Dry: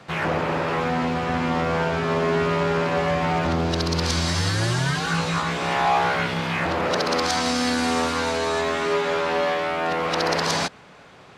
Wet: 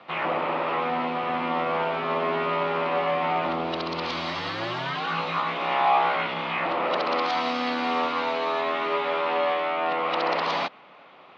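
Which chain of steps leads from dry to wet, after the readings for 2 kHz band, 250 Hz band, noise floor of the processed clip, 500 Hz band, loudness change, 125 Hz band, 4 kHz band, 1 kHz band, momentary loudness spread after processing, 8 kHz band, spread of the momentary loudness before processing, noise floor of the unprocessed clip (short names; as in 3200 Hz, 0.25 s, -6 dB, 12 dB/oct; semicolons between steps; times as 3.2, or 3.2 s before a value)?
-4.0 dB, -7.5 dB, -50 dBFS, -3.0 dB, -3.0 dB, -14.5 dB, -5.0 dB, 0.0 dB, 4 LU, under -20 dB, 2 LU, -47 dBFS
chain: speaker cabinet 340–3400 Hz, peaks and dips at 430 Hz -6 dB, 1200 Hz +3 dB, 1600 Hz -9 dB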